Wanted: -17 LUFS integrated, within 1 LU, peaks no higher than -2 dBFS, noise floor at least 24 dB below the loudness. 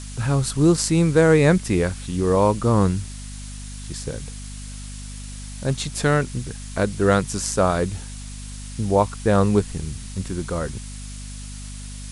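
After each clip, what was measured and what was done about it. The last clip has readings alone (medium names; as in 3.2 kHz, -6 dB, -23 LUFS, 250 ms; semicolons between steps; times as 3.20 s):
hum 50 Hz; highest harmonic 250 Hz; hum level -33 dBFS; noise floor -35 dBFS; noise floor target -45 dBFS; loudness -21.0 LUFS; peak level -2.0 dBFS; loudness target -17.0 LUFS
-> hum notches 50/100/150/200/250 Hz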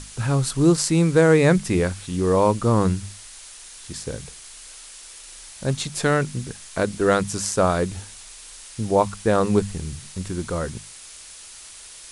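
hum not found; noise floor -42 dBFS; noise floor target -46 dBFS
-> noise print and reduce 6 dB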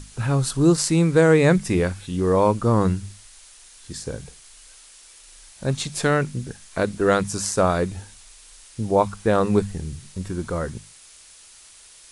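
noise floor -48 dBFS; loudness -21.5 LUFS; peak level -3.5 dBFS; loudness target -17.0 LUFS
-> trim +4.5 dB; peak limiter -2 dBFS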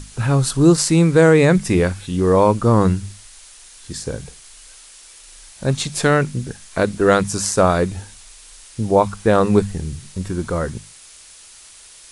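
loudness -17.5 LUFS; peak level -2.0 dBFS; noise floor -44 dBFS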